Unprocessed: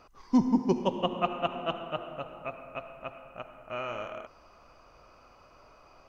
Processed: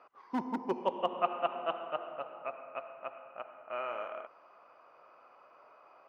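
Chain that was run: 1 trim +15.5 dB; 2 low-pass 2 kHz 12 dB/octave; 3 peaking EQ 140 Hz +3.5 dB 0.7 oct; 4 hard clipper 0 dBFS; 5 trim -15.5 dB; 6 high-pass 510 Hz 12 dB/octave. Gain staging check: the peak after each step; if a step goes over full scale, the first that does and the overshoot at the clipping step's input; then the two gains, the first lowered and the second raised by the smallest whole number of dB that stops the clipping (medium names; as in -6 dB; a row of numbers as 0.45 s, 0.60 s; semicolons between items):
+3.0 dBFS, +2.5 dBFS, +3.0 dBFS, 0.0 dBFS, -15.5 dBFS, -14.0 dBFS; step 1, 3.0 dB; step 1 +12.5 dB, step 5 -12.5 dB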